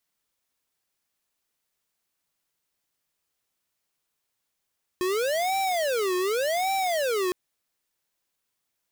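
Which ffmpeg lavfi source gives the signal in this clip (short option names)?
-f lavfi -i "aevalsrc='0.0531*(2*lt(mod((570*t-208/(2*PI*0.87)*sin(2*PI*0.87*t)),1),0.5)-1)':d=2.31:s=44100"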